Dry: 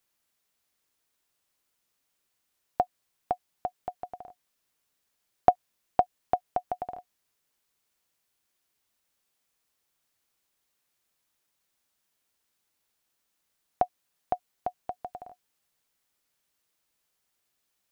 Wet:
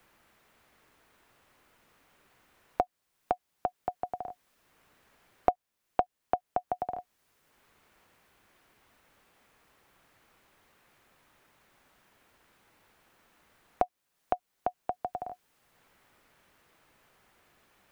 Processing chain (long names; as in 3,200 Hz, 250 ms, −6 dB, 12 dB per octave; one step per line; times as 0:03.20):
multiband upward and downward compressor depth 70%